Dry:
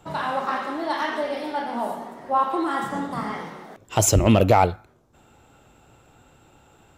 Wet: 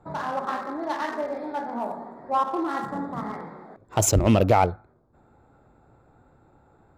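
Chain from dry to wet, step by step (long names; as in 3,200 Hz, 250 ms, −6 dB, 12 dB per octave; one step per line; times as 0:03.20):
adaptive Wiener filter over 15 samples
level −2 dB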